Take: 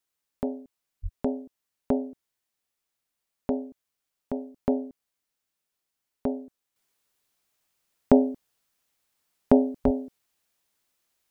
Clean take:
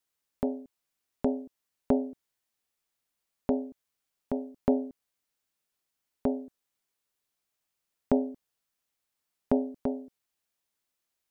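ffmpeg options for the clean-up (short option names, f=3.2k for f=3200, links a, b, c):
-filter_complex "[0:a]asplit=3[a][b][c];[a]afade=t=out:st=1.02:d=0.02[d];[b]highpass=f=140:w=0.5412,highpass=f=140:w=1.3066,afade=t=in:st=1.02:d=0.02,afade=t=out:st=1.14:d=0.02[e];[c]afade=t=in:st=1.14:d=0.02[f];[d][e][f]amix=inputs=3:normalize=0,asplit=3[g][h][i];[g]afade=t=out:st=9.84:d=0.02[j];[h]highpass=f=140:w=0.5412,highpass=f=140:w=1.3066,afade=t=in:st=9.84:d=0.02,afade=t=out:st=9.96:d=0.02[k];[i]afade=t=in:st=9.96:d=0.02[l];[j][k][l]amix=inputs=3:normalize=0,asetnsamples=n=441:p=0,asendcmd='6.76 volume volume -7.5dB',volume=0dB"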